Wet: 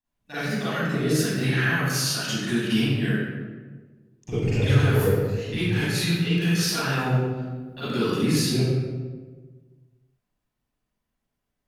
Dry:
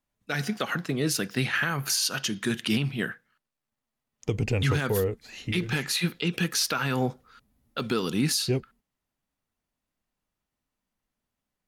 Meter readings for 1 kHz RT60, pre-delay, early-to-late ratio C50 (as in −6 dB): 1.2 s, 37 ms, −6.0 dB